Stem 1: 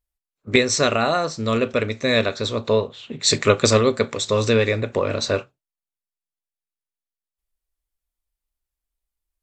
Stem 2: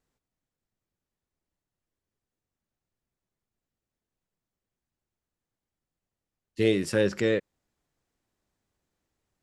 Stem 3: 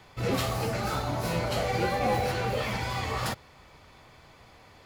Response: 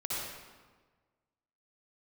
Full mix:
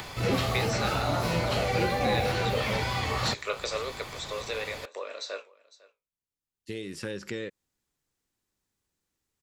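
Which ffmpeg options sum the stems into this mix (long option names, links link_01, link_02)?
-filter_complex "[0:a]flanger=delay=9.9:depth=9.5:regen=61:speed=1:shape=triangular,highpass=frequency=460:width=0.5412,highpass=frequency=460:width=1.3066,volume=-10dB,asplit=3[link_01][link_02][link_03];[link_02]volume=-22.5dB[link_04];[1:a]equalizer=frequency=650:width_type=o:width=0.41:gain=-6,acompressor=threshold=-27dB:ratio=12,adelay=100,volume=-4dB[link_05];[2:a]acompressor=mode=upward:threshold=-34dB:ratio=2.5,acrossover=split=500[link_06][link_07];[link_07]acompressor=threshold=-30dB:ratio=6[link_08];[link_06][link_08]amix=inputs=2:normalize=0,volume=1.5dB[link_09];[link_03]apad=whole_len=420137[link_10];[link_05][link_10]sidechaincompress=threshold=-48dB:ratio=8:attack=5.7:release=1290[link_11];[link_04]aecho=0:1:502:1[link_12];[link_01][link_11][link_09][link_12]amix=inputs=4:normalize=0,acrossover=split=4700[link_13][link_14];[link_14]acompressor=threshold=-52dB:ratio=4:attack=1:release=60[link_15];[link_13][link_15]amix=inputs=2:normalize=0,highshelf=frequency=3200:gain=8"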